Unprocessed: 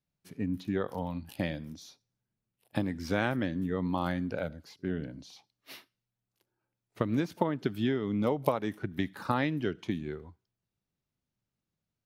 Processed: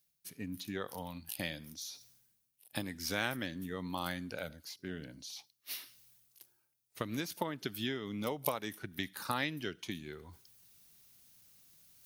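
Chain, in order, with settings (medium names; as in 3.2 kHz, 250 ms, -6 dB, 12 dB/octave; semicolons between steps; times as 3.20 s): pre-emphasis filter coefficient 0.9; band-stop 7.5 kHz, Q 14; reverse; upward compressor, threshold -55 dBFS; reverse; trim +10 dB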